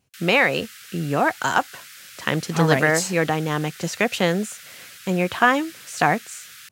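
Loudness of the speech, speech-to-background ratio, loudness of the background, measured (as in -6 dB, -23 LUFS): -21.5 LUFS, 19.0 dB, -40.5 LUFS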